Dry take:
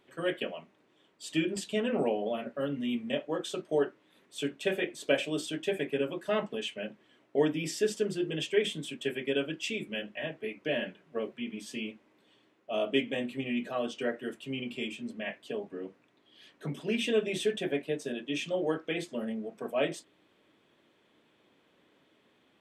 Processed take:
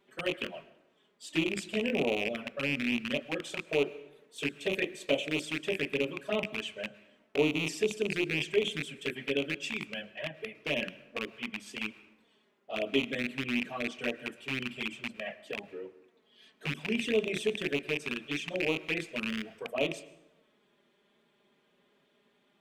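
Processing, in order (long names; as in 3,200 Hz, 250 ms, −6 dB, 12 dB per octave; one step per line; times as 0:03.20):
loose part that buzzes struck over −39 dBFS, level −18 dBFS
flanger swept by the level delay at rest 5.1 ms, full sweep at −24.5 dBFS
dense smooth reverb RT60 0.97 s, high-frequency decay 0.65×, pre-delay 95 ms, DRR 17.5 dB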